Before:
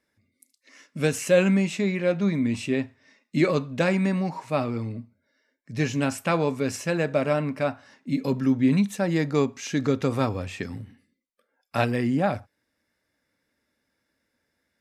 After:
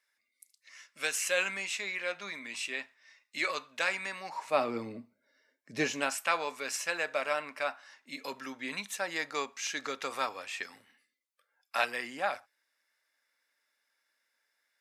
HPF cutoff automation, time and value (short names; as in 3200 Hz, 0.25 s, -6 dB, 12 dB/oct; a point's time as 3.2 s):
4.2 s 1200 Hz
4.76 s 340 Hz
5.76 s 340 Hz
6.19 s 1000 Hz